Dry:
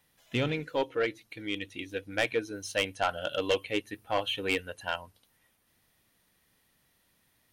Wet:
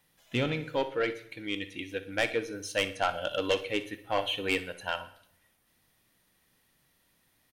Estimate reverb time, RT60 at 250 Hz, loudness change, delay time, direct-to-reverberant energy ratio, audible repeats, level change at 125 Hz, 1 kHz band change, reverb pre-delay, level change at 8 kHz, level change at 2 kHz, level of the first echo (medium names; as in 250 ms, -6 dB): 0.65 s, 0.85 s, +0.5 dB, 61 ms, 10.0 dB, 2, 0.0 dB, +0.5 dB, 3 ms, +0.5 dB, +0.5 dB, -15.5 dB